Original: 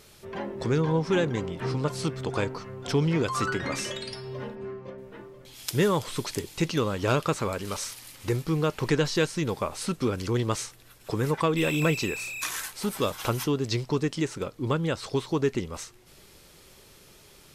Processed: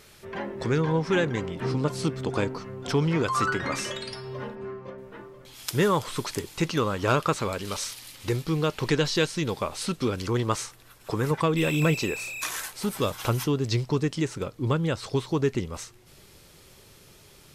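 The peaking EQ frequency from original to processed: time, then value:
peaking EQ +4.5 dB 1.1 oct
1.8 kHz
from 1.55 s 250 Hz
from 2.90 s 1.2 kHz
from 7.33 s 3.7 kHz
from 10.23 s 1.1 kHz
from 11.31 s 120 Hz
from 11.94 s 590 Hz
from 12.76 s 110 Hz

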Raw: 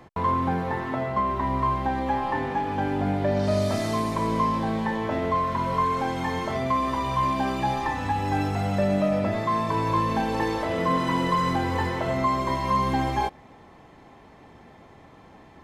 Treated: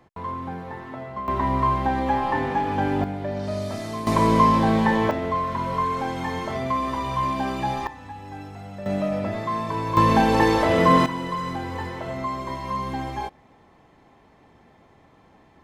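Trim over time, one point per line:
-7.5 dB
from 1.28 s +3 dB
from 3.04 s -5 dB
from 4.07 s +7 dB
from 5.11 s -0.5 dB
from 7.87 s -12.5 dB
from 8.86 s -2 dB
from 9.97 s +7.5 dB
from 11.06 s -5 dB

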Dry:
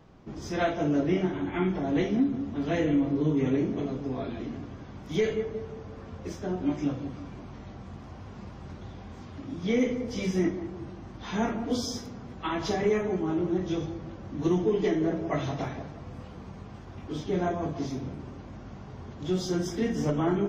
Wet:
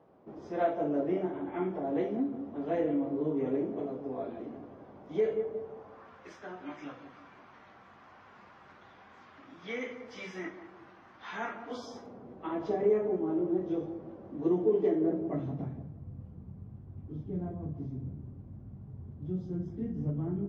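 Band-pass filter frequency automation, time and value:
band-pass filter, Q 1.2
5.64 s 570 Hz
6.19 s 1.5 kHz
11.61 s 1.5 kHz
12.25 s 450 Hz
14.96 s 450 Hz
15.96 s 110 Hz

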